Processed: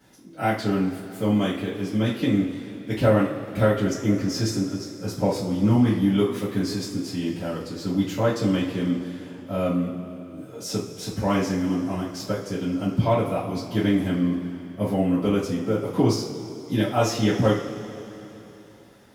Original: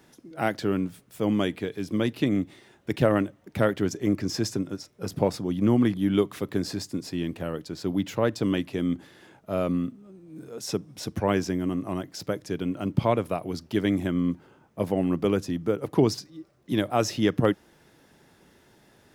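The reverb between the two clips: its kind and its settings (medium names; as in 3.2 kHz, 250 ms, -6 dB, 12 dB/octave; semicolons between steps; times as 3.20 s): two-slope reverb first 0.35 s, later 3.4 s, from -18 dB, DRR -10 dB; trim -8 dB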